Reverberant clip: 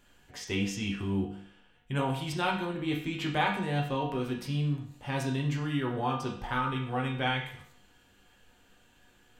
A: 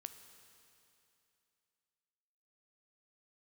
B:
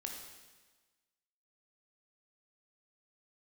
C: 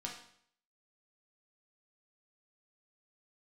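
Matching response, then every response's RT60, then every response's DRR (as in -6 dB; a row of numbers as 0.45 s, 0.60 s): C; 2.8 s, 1.3 s, 0.60 s; 8.0 dB, 1.0 dB, -2.0 dB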